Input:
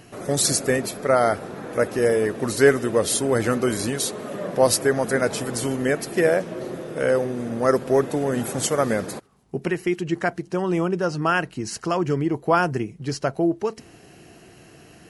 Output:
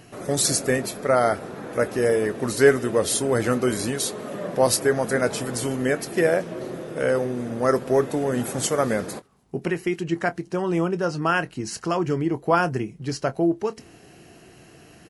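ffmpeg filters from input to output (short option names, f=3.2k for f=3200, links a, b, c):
-filter_complex "[0:a]asplit=2[a][b];[b]adelay=24,volume=-14dB[c];[a][c]amix=inputs=2:normalize=0,volume=-1dB"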